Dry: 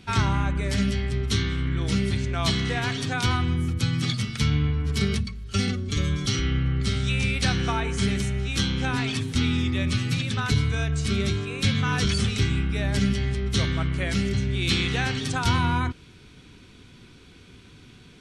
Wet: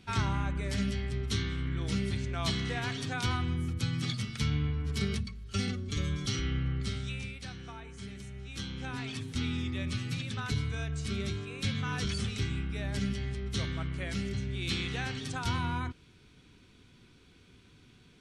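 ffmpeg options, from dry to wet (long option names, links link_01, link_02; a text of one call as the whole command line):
ffmpeg -i in.wav -af "volume=2.5dB,afade=type=out:start_time=6.7:duration=0.7:silence=0.251189,afade=type=in:start_time=8.14:duration=1.3:silence=0.316228" out.wav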